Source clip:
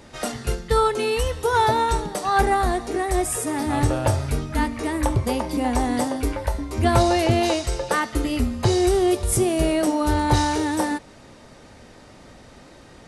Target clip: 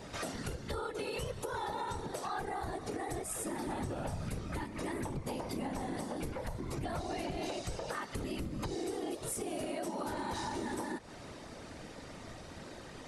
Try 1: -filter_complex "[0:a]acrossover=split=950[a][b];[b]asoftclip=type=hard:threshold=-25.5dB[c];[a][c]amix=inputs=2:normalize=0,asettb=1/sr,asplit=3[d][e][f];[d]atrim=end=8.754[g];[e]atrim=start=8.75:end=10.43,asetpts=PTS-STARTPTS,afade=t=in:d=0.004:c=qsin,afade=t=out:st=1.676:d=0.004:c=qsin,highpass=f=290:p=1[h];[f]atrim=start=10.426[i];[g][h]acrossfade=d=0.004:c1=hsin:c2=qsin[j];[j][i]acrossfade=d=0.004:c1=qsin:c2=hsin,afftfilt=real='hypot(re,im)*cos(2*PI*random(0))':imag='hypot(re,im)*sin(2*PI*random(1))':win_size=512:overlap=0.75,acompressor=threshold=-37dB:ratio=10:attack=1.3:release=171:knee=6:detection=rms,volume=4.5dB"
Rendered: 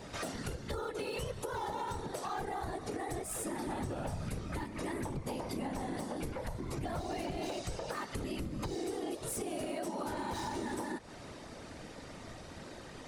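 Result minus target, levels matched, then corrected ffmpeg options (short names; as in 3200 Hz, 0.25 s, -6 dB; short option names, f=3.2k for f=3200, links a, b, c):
hard clip: distortion +26 dB
-filter_complex "[0:a]acrossover=split=950[a][b];[b]asoftclip=type=hard:threshold=-14dB[c];[a][c]amix=inputs=2:normalize=0,asettb=1/sr,asplit=3[d][e][f];[d]atrim=end=8.754[g];[e]atrim=start=8.75:end=10.43,asetpts=PTS-STARTPTS,afade=t=in:d=0.004:c=qsin,afade=t=out:st=1.676:d=0.004:c=qsin,highpass=f=290:p=1[h];[f]atrim=start=10.426[i];[g][h]acrossfade=d=0.004:c1=hsin:c2=qsin[j];[j][i]acrossfade=d=0.004:c1=qsin:c2=hsin,afftfilt=real='hypot(re,im)*cos(2*PI*random(0))':imag='hypot(re,im)*sin(2*PI*random(1))':win_size=512:overlap=0.75,acompressor=threshold=-37dB:ratio=10:attack=1.3:release=171:knee=6:detection=rms,volume=4.5dB"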